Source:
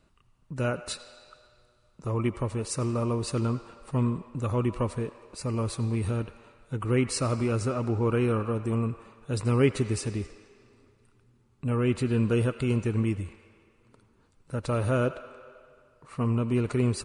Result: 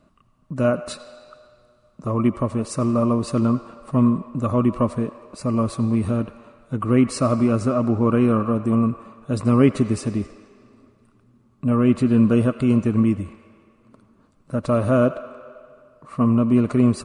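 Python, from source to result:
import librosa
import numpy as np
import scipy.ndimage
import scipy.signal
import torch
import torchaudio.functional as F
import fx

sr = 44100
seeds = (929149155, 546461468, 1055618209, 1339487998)

y = fx.small_body(x, sr, hz=(230.0, 610.0, 1100.0), ring_ms=20, db=12)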